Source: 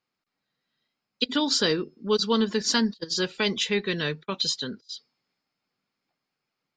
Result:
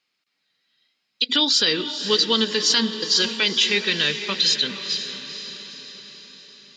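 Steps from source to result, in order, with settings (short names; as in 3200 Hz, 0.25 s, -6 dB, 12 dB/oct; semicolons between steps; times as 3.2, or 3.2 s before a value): weighting filter D; limiter -10.5 dBFS, peak gain reduction 10 dB; diffused feedback echo 0.482 s, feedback 55%, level -10 dB; gain +1.5 dB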